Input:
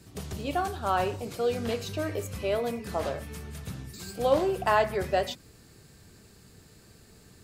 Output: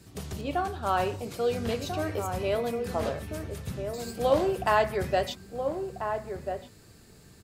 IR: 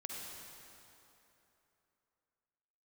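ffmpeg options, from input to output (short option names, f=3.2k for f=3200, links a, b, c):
-filter_complex "[0:a]asettb=1/sr,asplit=3[a][b][c];[a]atrim=end=0.414[d];[b]atrim=start=0.41:end=0.83,asetpts=PTS-STARTPTS,afade=t=in:d=0.004:c=qsin,afade=t=out:st=0.416:d=0.004:c=qsin,highshelf=f=4.5k:g=-8[e];[c]atrim=start=0.826[f];[d][e]acrossfade=d=0.004:c1=hsin:c2=qsin[g];[g][f]acrossfade=d=0.004:c1=qsin:c2=hsin,asplit=2[h][i];[i]adelay=1341,volume=-6dB,highshelf=f=4k:g=-30.2[j];[h][j]amix=inputs=2:normalize=0"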